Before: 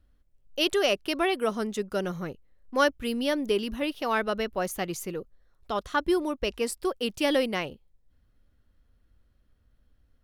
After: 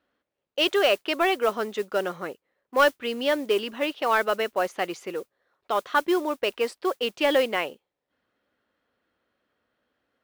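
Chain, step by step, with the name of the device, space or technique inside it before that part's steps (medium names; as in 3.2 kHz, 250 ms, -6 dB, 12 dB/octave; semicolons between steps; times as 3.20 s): carbon microphone (band-pass 420–3300 Hz; saturation -15 dBFS, distortion -21 dB; modulation noise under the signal 23 dB); trim +6 dB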